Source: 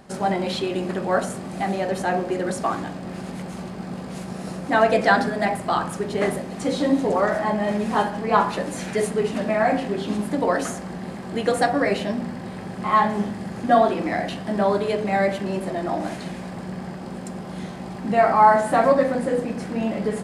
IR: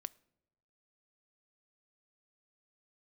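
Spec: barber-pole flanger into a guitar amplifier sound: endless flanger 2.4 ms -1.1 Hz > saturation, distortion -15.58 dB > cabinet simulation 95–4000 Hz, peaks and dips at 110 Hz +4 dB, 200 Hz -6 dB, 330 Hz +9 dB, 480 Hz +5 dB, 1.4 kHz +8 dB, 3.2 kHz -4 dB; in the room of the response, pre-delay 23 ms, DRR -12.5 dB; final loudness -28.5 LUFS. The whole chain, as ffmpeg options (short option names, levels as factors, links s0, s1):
-filter_complex "[0:a]asplit=2[s0][s1];[1:a]atrim=start_sample=2205,adelay=23[s2];[s1][s2]afir=irnorm=-1:irlink=0,volume=6.31[s3];[s0][s3]amix=inputs=2:normalize=0,asplit=2[s4][s5];[s5]adelay=2.4,afreqshift=-1.1[s6];[s4][s6]amix=inputs=2:normalize=1,asoftclip=threshold=0.794,highpass=95,equalizer=f=110:t=q:w=4:g=4,equalizer=f=200:t=q:w=4:g=-6,equalizer=f=330:t=q:w=4:g=9,equalizer=f=480:t=q:w=4:g=5,equalizer=f=1400:t=q:w=4:g=8,equalizer=f=3200:t=q:w=4:g=-4,lowpass=f=4000:w=0.5412,lowpass=f=4000:w=1.3066,volume=0.15"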